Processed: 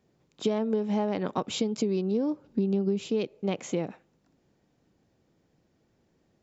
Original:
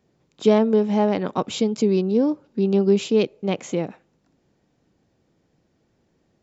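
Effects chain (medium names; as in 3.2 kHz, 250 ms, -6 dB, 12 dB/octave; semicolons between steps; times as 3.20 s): 2.44–3.11 s: bass shelf 260 Hz +9.5 dB; compression 12:1, threshold -20 dBFS, peak gain reduction 12.5 dB; trim -3 dB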